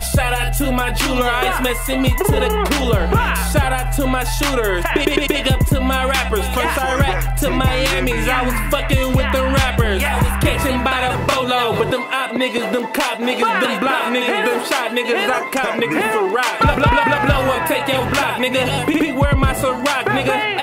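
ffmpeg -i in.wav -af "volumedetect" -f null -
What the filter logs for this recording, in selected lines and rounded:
mean_volume: -16.9 dB
max_volume: -4.3 dB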